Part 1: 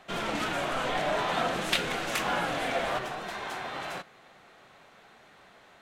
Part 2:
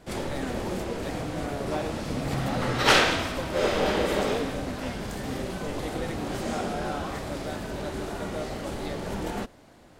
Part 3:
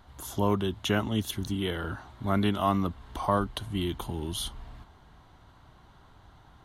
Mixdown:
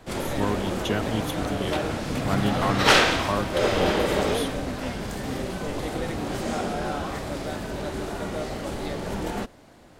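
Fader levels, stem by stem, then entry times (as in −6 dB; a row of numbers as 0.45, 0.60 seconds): −9.0, +2.0, −1.0 decibels; 0.00, 0.00, 0.00 seconds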